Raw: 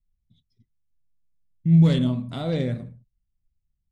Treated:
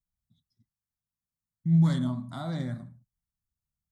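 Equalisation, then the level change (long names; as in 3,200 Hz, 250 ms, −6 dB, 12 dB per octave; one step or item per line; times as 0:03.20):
high-pass filter 210 Hz 6 dB per octave
phaser with its sweep stopped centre 1,100 Hz, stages 4
0.0 dB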